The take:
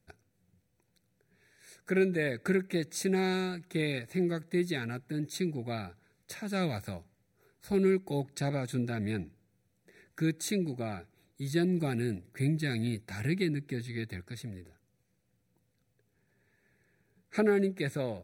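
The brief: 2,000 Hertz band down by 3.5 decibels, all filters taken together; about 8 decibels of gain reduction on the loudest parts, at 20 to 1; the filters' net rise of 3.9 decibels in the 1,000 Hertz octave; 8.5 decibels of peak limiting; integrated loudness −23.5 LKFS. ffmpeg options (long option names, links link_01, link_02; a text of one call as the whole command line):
ffmpeg -i in.wav -af "equalizer=frequency=1000:width_type=o:gain=8,equalizer=frequency=2000:width_type=o:gain=-7.5,acompressor=threshold=-29dB:ratio=20,volume=16dB,alimiter=limit=-13dB:level=0:latency=1" out.wav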